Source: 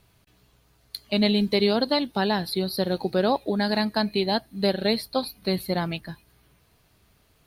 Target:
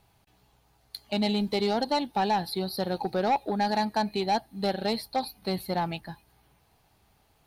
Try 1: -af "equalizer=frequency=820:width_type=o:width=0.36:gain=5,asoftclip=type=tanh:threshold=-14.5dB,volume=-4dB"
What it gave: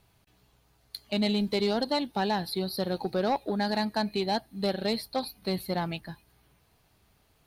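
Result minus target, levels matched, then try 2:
1,000 Hz band −3.5 dB
-af "equalizer=frequency=820:width_type=o:width=0.36:gain=12,asoftclip=type=tanh:threshold=-14.5dB,volume=-4dB"

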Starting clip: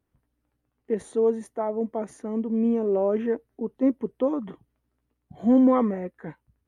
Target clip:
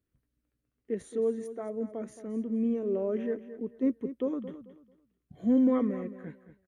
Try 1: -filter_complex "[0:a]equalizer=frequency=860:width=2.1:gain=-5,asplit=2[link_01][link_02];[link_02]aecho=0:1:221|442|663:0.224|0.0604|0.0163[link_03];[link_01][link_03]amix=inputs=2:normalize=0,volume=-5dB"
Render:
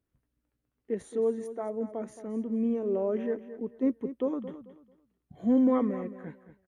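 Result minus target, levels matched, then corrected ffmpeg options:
1,000 Hz band +4.0 dB
-filter_complex "[0:a]equalizer=frequency=860:width=2.1:gain=-13,asplit=2[link_01][link_02];[link_02]aecho=0:1:221|442|663:0.224|0.0604|0.0163[link_03];[link_01][link_03]amix=inputs=2:normalize=0,volume=-5dB"

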